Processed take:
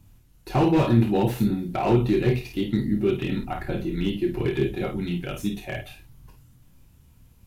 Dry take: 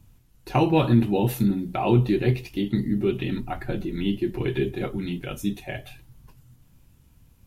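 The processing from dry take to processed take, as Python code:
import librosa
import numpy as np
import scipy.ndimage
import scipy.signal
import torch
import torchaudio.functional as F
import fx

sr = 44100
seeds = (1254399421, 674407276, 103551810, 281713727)

y = fx.room_early_taps(x, sr, ms=(28, 52), db=(-7.0, -7.5))
y = fx.slew_limit(y, sr, full_power_hz=80.0)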